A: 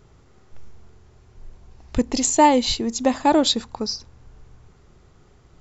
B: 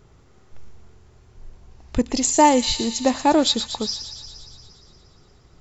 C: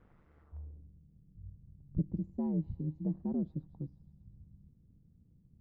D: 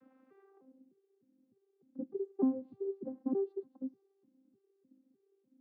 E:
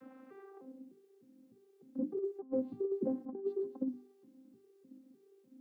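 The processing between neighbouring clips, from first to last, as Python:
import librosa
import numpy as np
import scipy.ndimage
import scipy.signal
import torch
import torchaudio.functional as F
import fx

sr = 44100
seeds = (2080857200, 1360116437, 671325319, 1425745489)

y1 = fx.echo_wet_highpass(x, sr, ms=117, feedback_pct=72, hz=2500.0, wet_db=-8)
y2 = y1 * np.sin(2.0 * np.pi * 75.0 * np.arange(len(y1)) / sr)
y2 = fx.filter_sweep_lowpass(y2, sr, from_hz=1800.0, to_hz=190.0, start_s=0.4, end_s=0.9, q=1.5)
y2 = F.gain(torch.from_numpy(y2), -9.0).numpy()
y3 = fx.vocoder_arp(y2, sr, chord='bare fifth', root=60, every_ms=302)
y4 = fx.hum_notches(y3, sr, base_hz=50, count=8)
y4 = fx.over_compress(y4, sr, threshold_db=-40.0, ratio=-0.5)
y4 = F.gain(torch.from_numpy(y4), 5.5).numpy()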